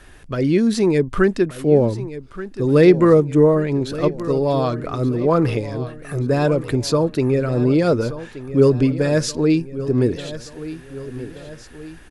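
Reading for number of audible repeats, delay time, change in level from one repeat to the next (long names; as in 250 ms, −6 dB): 3, 1,178 ms, −6.0 dB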